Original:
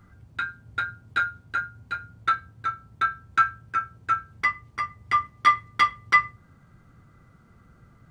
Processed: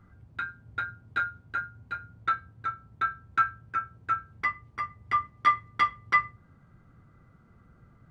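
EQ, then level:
high-shelf EQ 3,300 Hz −10.5 dB
−2.5 dB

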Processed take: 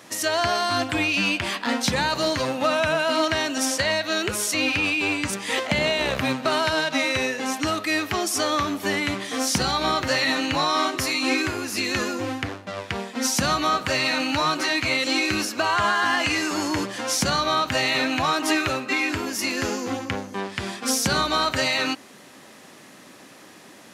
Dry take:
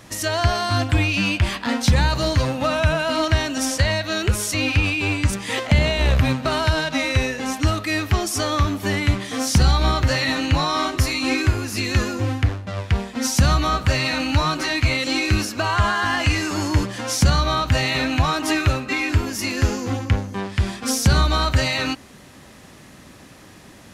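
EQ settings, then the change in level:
high-pass filter 250 Hz 12 dB per octave
0.0 dB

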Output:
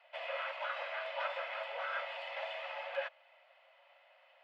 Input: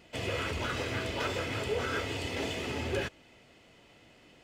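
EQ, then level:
Chebyshev high-pass filter 540 Hz, order 8
high-frequency loss of the air 420 metres
high-shelf EQ 9,100 Hz −5 dB
+1.0 dB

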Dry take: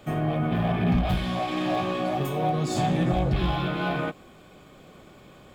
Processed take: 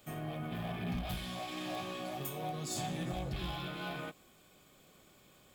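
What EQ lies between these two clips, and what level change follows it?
first-order pre-emphasis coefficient 0.8
−1.0 dB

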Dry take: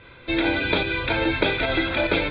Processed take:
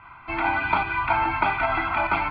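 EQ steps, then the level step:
flat-topped bell 1,100 Hz +15 dB
phaser with its sweep stopped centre 2,500 Hz, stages 8
−4.5 dB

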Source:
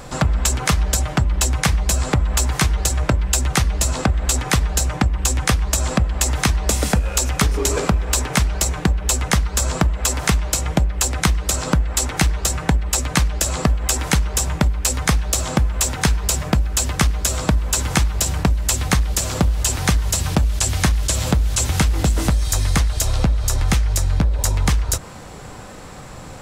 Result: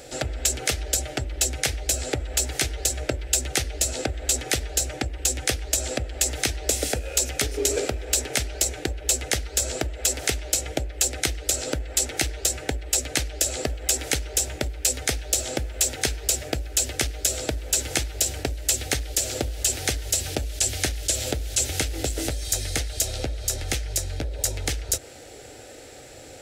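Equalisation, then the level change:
high-pass filter 170 Hz 6 dB per octave
phaser with its sweep stopped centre 440 Hz, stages 4
−1.5 dB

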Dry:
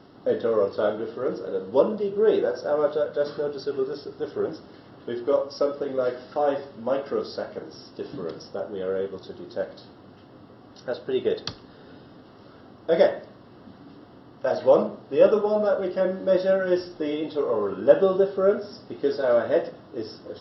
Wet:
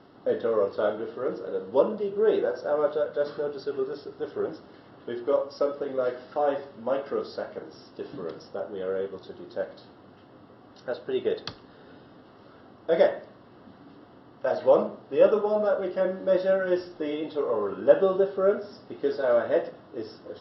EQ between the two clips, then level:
high-frequency loss of the air 140 metres
low-shelf EQ 350 Hz −5.5 dB
0.0 dB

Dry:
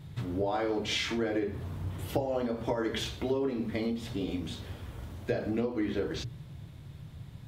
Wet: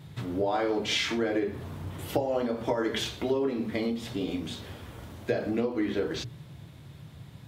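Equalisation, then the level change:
high-pass filter 160 Hz 6 dB per octave
+3.5 dB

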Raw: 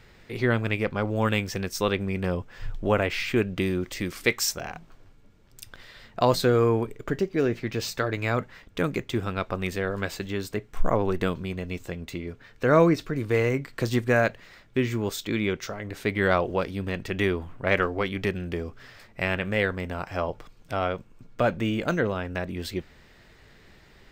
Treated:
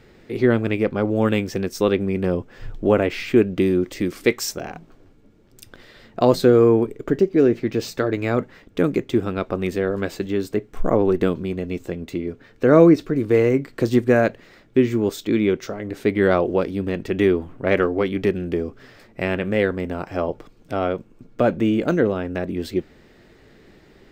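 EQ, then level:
parametric band 320 Hz +11 dB 1.9 octaves
notch filter 990 Hz, Q 24
−1.0 dB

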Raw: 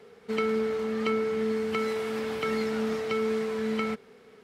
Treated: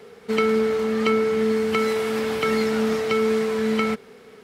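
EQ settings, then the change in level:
high-shelf EQ 6,900 Hz +4.5 dB
+7.0 dB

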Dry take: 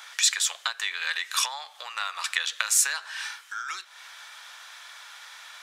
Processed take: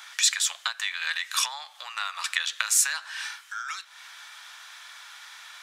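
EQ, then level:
high-pass filter 750 Hz 12 dB per octave
0.0 dB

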